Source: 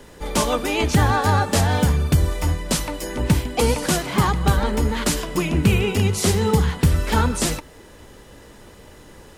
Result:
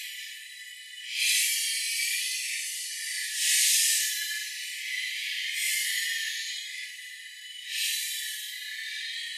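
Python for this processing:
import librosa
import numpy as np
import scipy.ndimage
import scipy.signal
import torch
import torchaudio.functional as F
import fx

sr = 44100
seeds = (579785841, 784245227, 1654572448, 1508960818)

y = fx.brickwall_bandpass(x, sr, low_hz=1700.0, high_hz=14000.0)
y = fx.paulstretch(y, sr, seeds[0], factor=7.4, window_s=0.05, from_s=3.42)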